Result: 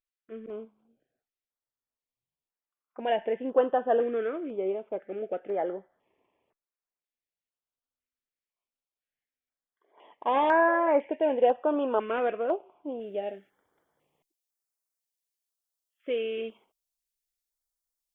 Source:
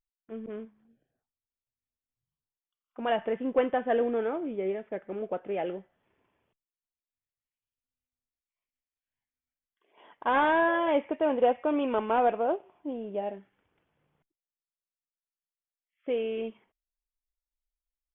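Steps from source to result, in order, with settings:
bass and treble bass −13 dB, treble −11 dB, from 0:12.99 treble +6 dB
notch on a step sequencer 2 Hz 840–3,200 Hz
level +3.5 dB

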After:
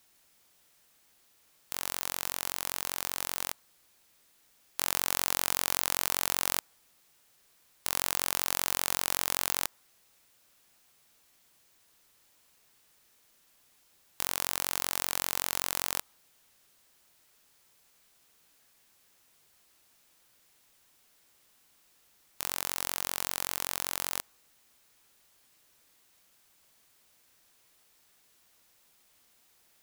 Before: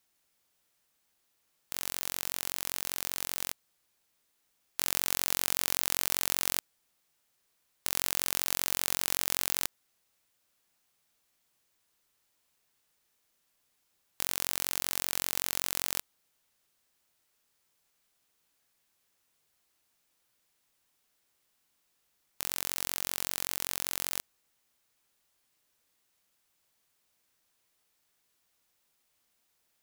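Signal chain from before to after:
mu-law and A-law mismatch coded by mu
dynamic equaliser 980 Hz, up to +6 dB, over −56 dBFS, Q 1.1

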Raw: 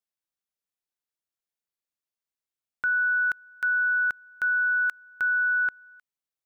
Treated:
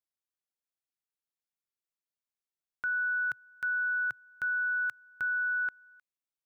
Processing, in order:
0:02.93–0:05.26: parametric band 120 Hz +13.5 dB 1.1 octaves
level −6.5 dB

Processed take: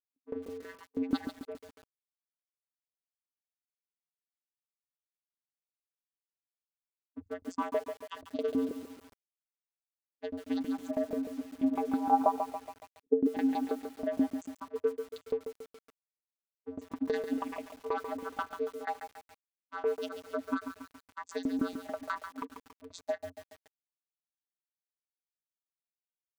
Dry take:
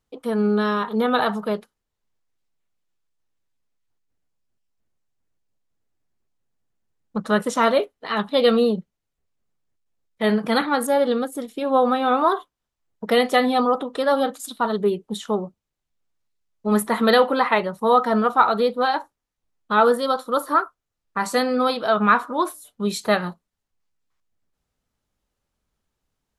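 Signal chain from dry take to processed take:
spectral dynamics exaggerated over time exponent 3
dynamic equaliser 300 Hz, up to +4 dB, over −49 dBFS, Q 6.1
leveller curve on the samples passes 3
downward compressor 8 to 1, threshold −23 dBFS, peak gain reduction 11.5 dB
channel vocoder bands 16, square 89.4 Hz
harmonic generator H 3 −23 dB, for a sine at −13.5 dBFS
0:11.97–0:13.32: low-pass with resonance 1,000 Hz → 310 Hz, resonance Q 10
shaped tremolo saw down 6.2 Hz, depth 95%
feedback echo at a low word length 140 ms, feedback 55%, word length 8 bits, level −8 dB

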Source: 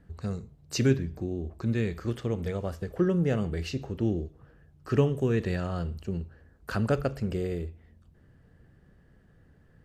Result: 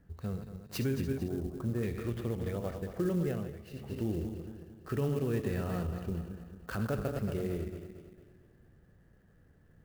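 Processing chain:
feedback delay that plays each chunk backwards 113 ms, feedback 67%, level −7.5 dB
0:01.28–0:01.83: high shelf with overshoot 1,800 Hz −13.5 dB, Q 1.5
brickwall limiter −18.5 dBFS, peak gain reduction 8.5 dB
high-frequency loss of the air 67 metres
0:03.21–0:04.05: duck −14 dB, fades 0.38 s
converter with an unsteady clock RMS 0.027 ms
level −4.5 dB

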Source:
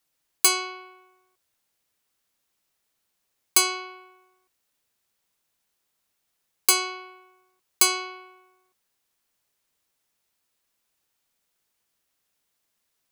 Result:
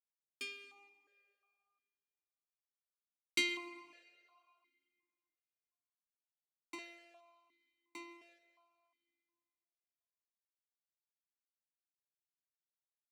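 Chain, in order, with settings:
source passing by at 0:02.85, 28 m/s, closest 16 metres
log-companded quantiser 4 bits
comb and all-pass reverb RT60 2.3 s, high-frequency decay 0.85×, pre-delay 80 ms, DRR 16 dB
formant filter that steps through the vowels 2.8 Hz
level +6.5 dB

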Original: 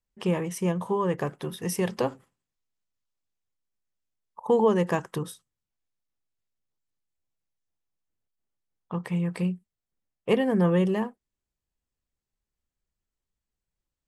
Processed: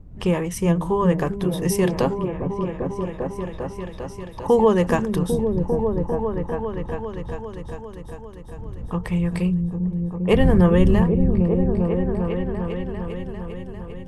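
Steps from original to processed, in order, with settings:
wind on the microphone 85 Hz −38 dBFS
echo whose low-pass opens from repeat to repeat 399 ms, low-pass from 200 Hz, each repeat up 1 octave, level 0 dB
level +5 dB

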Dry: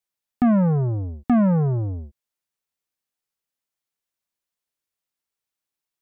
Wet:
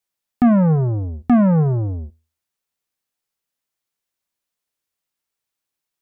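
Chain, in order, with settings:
tuned comb filter 80 Hz, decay 0.34 s, harmonics all, mix 30%
level +6 dB

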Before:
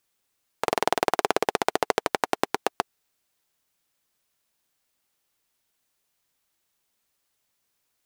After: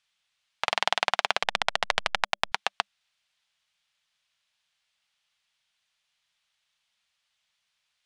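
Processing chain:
0:01.42–0:02.52: hold until the input has moved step −25 dBFS
drawn EQ curve 200 Hz 0 dB, 330 Hz −20 dB, 580 Hz +1 dB, 3,300 Hz +15 dB, 10,000 Hz −2 dB, 16,000 Hz −25 dB
level −7.5 dB

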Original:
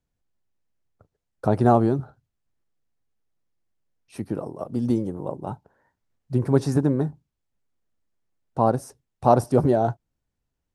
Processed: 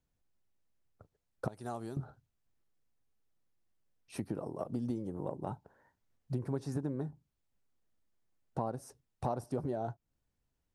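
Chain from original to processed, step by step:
0:01.48–0:01.97: first-order pre-emphasis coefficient 0.9
downward compressor 5 to 1, threshold −32 dBFS, peak gain reduction 18.5 dB
level −2 dB

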